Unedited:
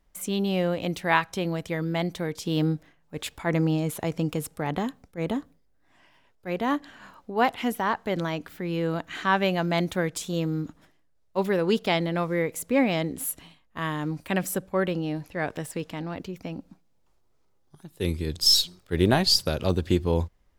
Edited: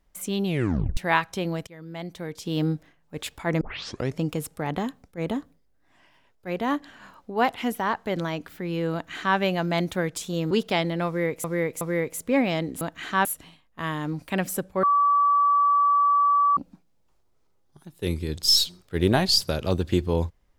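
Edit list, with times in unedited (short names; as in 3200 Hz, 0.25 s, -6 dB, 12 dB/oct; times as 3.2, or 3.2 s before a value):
0.45 tape stop 0.52 s
1.67–2.7 fade in, from -20.5 dB
3.61 tape start 0.57 s
8.93–9.37 copy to 13.23
10.51–11.67 cut
12.23–12.6 loop, 3 plays
14.81–16.55 bleep 1150 Hz -16.5 dBFS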